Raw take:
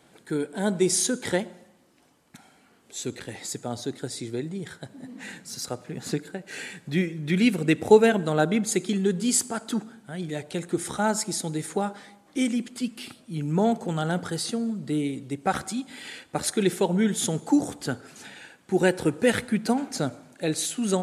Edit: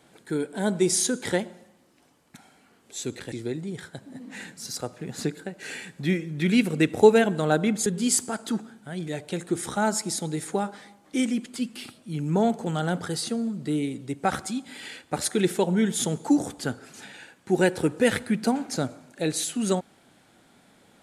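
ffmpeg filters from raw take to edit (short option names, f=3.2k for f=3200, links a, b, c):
-filter_complex "[0:a]asplit=3[a][b][c];[a]atrim=end=3.322[d];[b]atrim=start=4.198:end=8.742[e];[c]atrim=start=9.078[f];[d][e]acrossfade=d=0.004:c1=hsin:c2=hsin[g];[g][f]acrossfade=d=0.004:c1=hsin:c2=hsin"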